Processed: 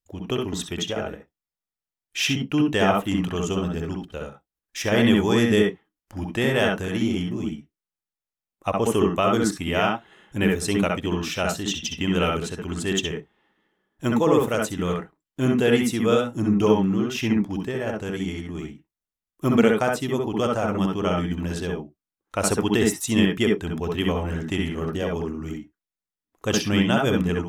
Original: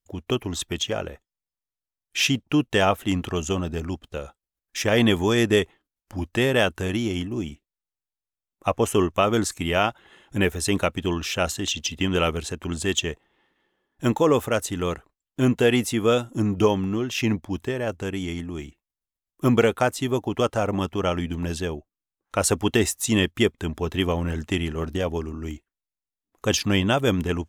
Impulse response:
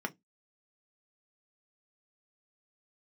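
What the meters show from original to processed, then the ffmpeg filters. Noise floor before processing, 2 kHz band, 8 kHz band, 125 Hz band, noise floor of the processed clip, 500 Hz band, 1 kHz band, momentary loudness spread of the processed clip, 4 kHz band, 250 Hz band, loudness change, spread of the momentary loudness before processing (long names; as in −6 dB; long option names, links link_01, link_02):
below −85 dBFS, 0.0 dB, −2.0 dB, 0.0 dB, below −85 dBFS, +0.5 dB, +0.5 dB, 13 LU, −1.5 dB, +2.0 dB, +0.5 dB, 12 LU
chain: -filter_complex "[0:a]asplit=2[link_01][link_02];[1:a]atrim=start_sample=2205,atrim=end_sample=3528,adelay=64[link_03];[link_02][link_03]afir=irnorm=-1:irlink=0,volume=-4.5dB[link_04];[link_01][link_04]amix=inputs=2:normalize=0,volume=-2.5dB"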